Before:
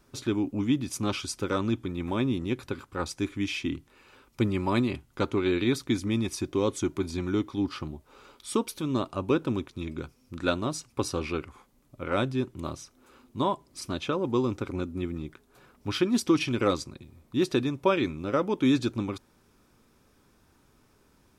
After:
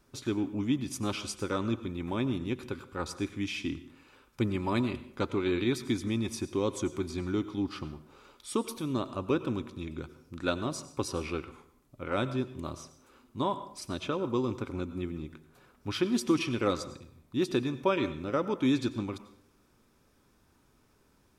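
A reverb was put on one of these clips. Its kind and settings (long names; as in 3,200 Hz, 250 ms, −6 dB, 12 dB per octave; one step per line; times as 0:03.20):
dense smooth reverb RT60 0.63 s, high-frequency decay 0.75×, pre-delay 80 ms, DRR 13 dB
level −3.5 dB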